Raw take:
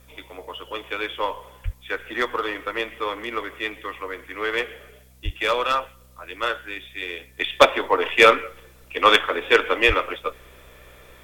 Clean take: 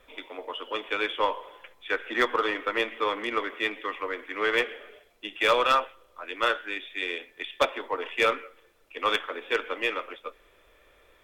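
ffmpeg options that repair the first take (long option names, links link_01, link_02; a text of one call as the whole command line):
ffmpeg -i in.wav -filter_complex "[0:a]bandreject=frequency=63.5:width_type=h:width=4,bandreject=frequency=127:width_type=h:width=4,bandreject=frequency=190.5:width_type=h:width=4,bandreject=frequency=254:width_type=h:width=4,asplit=3[link_01][link_02][link_03];[link_01]afade=type=out:start_time=1.64:duration=0.02[link_04];[link_02]highpass=frequency=140:width=0.5412,highpass=frequency=140:width=1.3066,afade=type=in:start_time=1.64:duration=0.02,afade=type=out:start_time=1.76:duration=0.02[link_05];[link_03]afade=type=in:start_time=1.76:duration=0.02[link_06];[link_04][link_05][link_06]amix=inputs=3:normalize=0,asplit=3[link_07][link_08][link_09];[link_07]afade=type=out:start_time=5.24:duration=0.02[link_10];[link_08]highpass=frequency=140:width=0.5412,highpass=frequency=140:width=1.3066,afade=type=in:start_time=5.24:duration=0.02,afade=type=out:start_time=5.36:duration=0.02[link_11];[link_09]afade=type=in:start_time=5.36:duration=0.02[link_12];[link_10][link_11][link_12]amix=inputs=3:normalize=0,asplit=3[link_13][link_14][link_15];[link_13]afade=type=out:start_time=9.87:duration=0.02[link_16];[link_14]highpass=frequency=140:width=0.5412,highpass=frequency=140:width=1.3066,afade=type=in:start_time=9.87:duration=0.02,afade=type=out:start_time=9.99:duration=0.02[link_17];[link_15]afade=type=in:start_time=9.99:duration=0.02[link_18];[link_16][link_17][link_18]amix=inputs=3:normalize=0,agate=range=-21dB:threshold=-41dB,asetnsamples=nb_out_samples=441:pad=0,asendcmd='7.39 volume volume -10.5dB',volume=0dB" out.wav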